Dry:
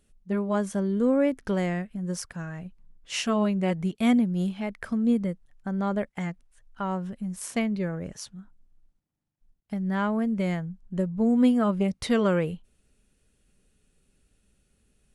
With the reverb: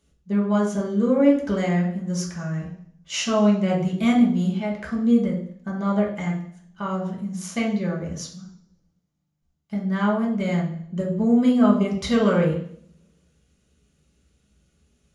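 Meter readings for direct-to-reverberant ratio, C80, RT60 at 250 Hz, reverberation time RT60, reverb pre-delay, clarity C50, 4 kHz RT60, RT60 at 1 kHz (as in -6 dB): -3.0 dB, 9.5 dB, 0.75 s, 0.60 s, 3 ms, 6.0 dB, 0.65 s, 0.60 s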